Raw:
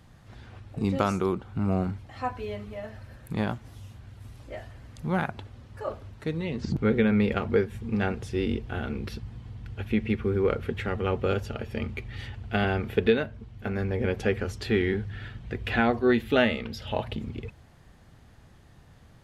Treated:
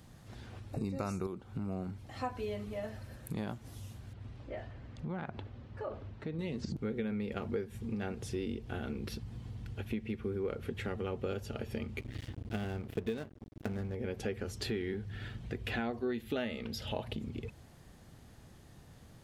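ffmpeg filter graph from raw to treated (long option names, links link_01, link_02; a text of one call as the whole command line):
ffmpeg -i in.wav -filter_complex "[0:a]asettb=1/sr,asplit=3[link_01][link_02][link_03];[link_01]atrim=end=0.734[link_04];[link_02]atrim=start=0.73:end=1.27,asetpts=PTS-STARTPTS,afade=type=in:duration=0.004:curve=qsin,afade=type=out:start_time=0.536:duration=0.004:curve=qsin,asubboost=boost=10:cutoff=160,acontrast=81,asuperstop=centerf=3200:order=20:qfactor=4[link_05];[link_03]atrim=start=1.266[link_06];[link_04][link_05]acrossfade=duration=0.004:curve1=hsin:curve2=qsin[link_07];[link_07][link_06]acrossfade=duration=0.004:curve1=qsin:curve2=hsin,asettb=1/sr,asplit=3[link_08][link_09][link_10];[link_08]atrim=end=4.134[link_11];[link_09]atrim=start=4.13:end=6.39,asetpts=PTS-STARTPTS,afade=type=in:duration=0.004:curve=qsin,afade=type=out:start_time=2.256:duration=0.004:curve=qsin,lowpass=3000,acompressor=threshold=-34dB:ratio=3:attack=3.2:release=140:knee=1:detection=peak[link_12];[link_10]atrim=start=6.386[link_13];[link_11][link_12]acrossfade=duration=0.004:curve1=hsin:curve2=qsin[link_14];[link_14][link_13]acrossfade=duration=0.004:curve1=qsin:curve2=hsin,asettb=1/sr,asplit=3[link_15][link_16][link_17];[link_15]atrim=end=12.004[link_18];[link_16]atrim=start=12:end=13.95,asetpts=PTS-STARTPTS,afade=type=in:duration=0.004:curve=qsin,afade=type=out:start_time=1.946:duration=0.004:curve=qsin,equalizer=frequency=100:width=0.48:gain=7.5,aeval=exprs='sgn(val(0))*max(abs(val(0))-0.0178,0)':channel_layout=same[link_19];[link_17]atrim=start=13.946[link_20];[link_18][link_19]acrossfade=duration=0.004:curve1=hsin:curve2=qsin[link_21];[link_21][link_20]acrossfade=duration=0.004:curve1=qsin:curve2=hsin,equalizer=frequency=1500:width=0.33:gain=-9,acompressor=threshold=-36dB:ratio=6,lowshelf=frequency=170:gain=-10,volume=5.5dB" out.wav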